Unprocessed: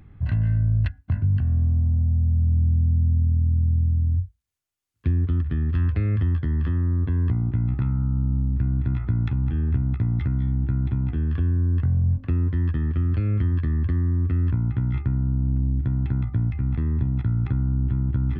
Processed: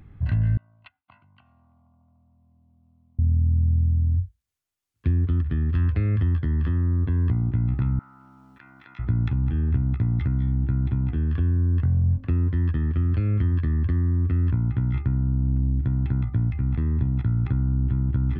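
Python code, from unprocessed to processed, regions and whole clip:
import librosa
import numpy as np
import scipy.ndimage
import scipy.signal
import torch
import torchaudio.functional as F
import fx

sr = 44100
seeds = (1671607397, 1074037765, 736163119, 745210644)

y = fx.chain(x, sr, fx.highpass(hz=960.0, slope=12),
    fx.high_shelf(hz=2000.0, db=-8.5),
    fx.fixed_phaser(hz=1700.0, stages=6), at=(0.57, 3.19))
y = fx.chain(y, sr, fx.highpass(hz=1300.0, slope=12),
    fx.env_flatten(amount_pct=70), at=(7.99, 8.99))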